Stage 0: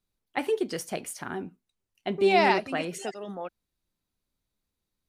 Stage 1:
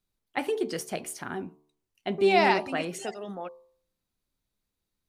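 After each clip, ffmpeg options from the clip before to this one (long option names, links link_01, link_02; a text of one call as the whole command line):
ffmpeg -i in.wav -af "bandreject=frequency=73.93:width_type=h:width=4,bandreject=frequency=147.86:width_type=h:width=4,bandreject=frequency=221.79:width_type=h:width=4,bandreject=frequency=295.72:width_type=h:width=4,bandreject=frequency=369.65:width_type=h:width=4,bandreject=frequency=443.58:width_type=h:width=4,bandreject=frequency=517.51:width_type=h:width=4,bandreject=frequency=591.44:width_type=h:width=4,bandreject=frequency=665.37:width_type=h:width=4,bandreject=frequency=739.3:width_type=h:width=4,bandreject=frequency=813.23:width_type=h:width=4,bandreject=frequency=887.16:width_type=h:width=4,bandreject=frequency=961.09:width_type=h:width=4,bandreject=frequency=1035.02:width_type=h:width=4,bandreject=frequency=1108.95:width_type=h:width=4,bandreject=frequency=1182.88:width_type=h:width=4" out.wav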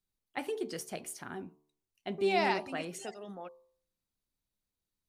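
ffmpeg -i in.wav -af "bass=frequency=250:gain=1,treble=frequency=4000:gain=3,volume=-7.5dB" out.wav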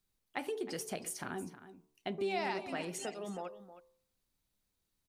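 ffmpeg -i in.wav -af "acompressor=threshold=-44dB:ratio=2.5,aecho=1:1:316:0.2,volume=5.5dB" out.wav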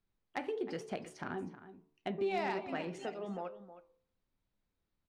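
ffmpeg -i in.wav -af "flanger=delay=8.3:depth=4.6:regen=-81:speed=1.1:shape=triangular,adynamicsmooth=sensitivity=4.5:basefreq=2900,asoftclip=type=hard:threshold=-31.5dB,volume=5.5dB" out.wav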